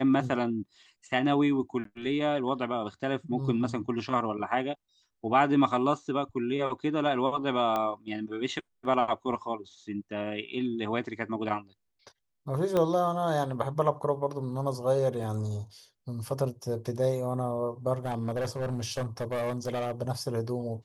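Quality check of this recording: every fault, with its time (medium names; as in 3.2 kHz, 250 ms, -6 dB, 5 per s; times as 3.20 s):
1.84–1.85 s: dropout 13 ms
7.76 s: pop -17 dBFS
12.77 s: pop -15 dBFS
15.23 s: dropout 3.2 ms
17.93–19.92 s: clipped -27 dBFS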